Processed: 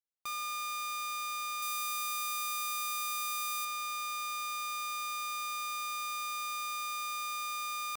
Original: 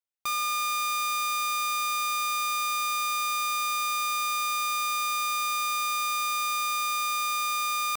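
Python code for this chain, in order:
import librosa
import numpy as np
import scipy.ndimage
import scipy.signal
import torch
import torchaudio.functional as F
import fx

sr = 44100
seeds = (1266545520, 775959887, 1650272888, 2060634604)

y = fx.peak_eq(x, sr, hz=16000.0, db=8.5, octaves=1.3, at=(1.62, 3.65))
y = y * 10.0 ** (-9.0 / 20.0)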